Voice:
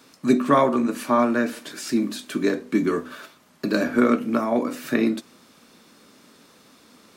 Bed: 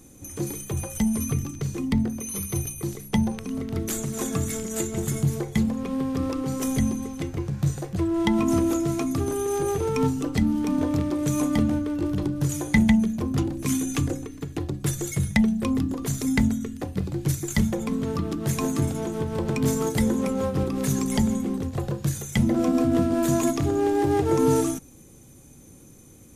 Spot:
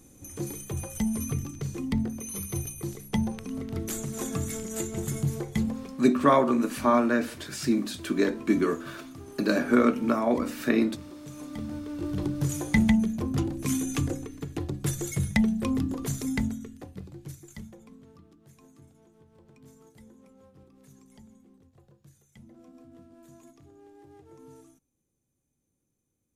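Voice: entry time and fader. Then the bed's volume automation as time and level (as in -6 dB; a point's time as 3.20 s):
5.75 s, -2.5 dB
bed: 5.72 s -4.5 dB
6.05 s -18.5 dB
11.35 s -18.5 dB
12.24 s -3 dB
16.05 s -3 dB
18.49 s -30.5 dB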